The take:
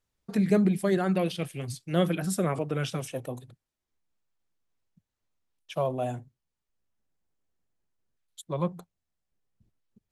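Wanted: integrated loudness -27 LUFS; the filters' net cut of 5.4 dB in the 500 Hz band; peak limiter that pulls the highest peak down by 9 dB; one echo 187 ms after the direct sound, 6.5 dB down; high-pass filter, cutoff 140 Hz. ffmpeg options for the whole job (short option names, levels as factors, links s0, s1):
-af "highpass=140,equalizer=f=500:t=o:g=-7,alimiter=limit=0.075:level=0:latency=1,aecho=1:1:187:0.473,volume=2.11"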